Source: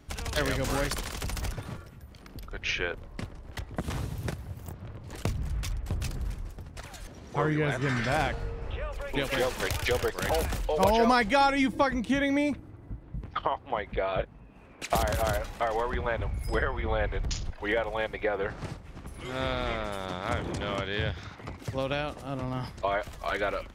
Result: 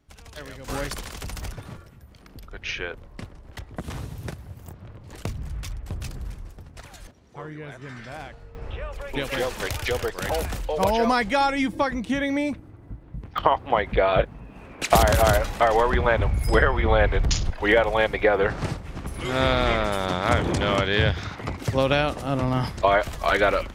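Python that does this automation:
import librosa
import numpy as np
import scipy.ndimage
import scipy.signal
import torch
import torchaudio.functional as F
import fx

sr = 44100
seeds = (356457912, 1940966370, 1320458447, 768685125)

y = fx.gain(x, sr, db=fx.steps((0.0, -11.0), (0.68, -0.5), (7.11, -10.5), (8.55, 1.5), (13.38, 9.5)))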